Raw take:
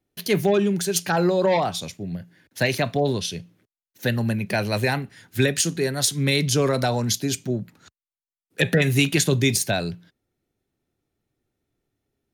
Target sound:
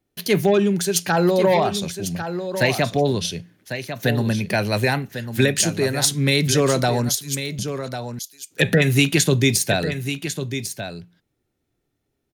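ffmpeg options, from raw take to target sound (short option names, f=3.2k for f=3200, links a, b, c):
-filter_complex "[0:a]asettb=1/sr,asplit=3[a][b][c];[a]atrim=end=7.094[d];[b]atrim=start=7.09:end=7.59,asetpts=PTS-STARTPTS,afade=t=in:d=0.004:c=qsin,afade=t=out:st=0.496:d=0.004:c=qsin,aderivative[e];[c]atrim=start=7.586[f];[d][e]acrossfade=d=0.004:c1=hsin:c2=qsin[g];[g][f]acrossfade=d=0.004:c1=qsin:c2=hsin,aecho=1:1:1098:0.335,volume=2.5dB"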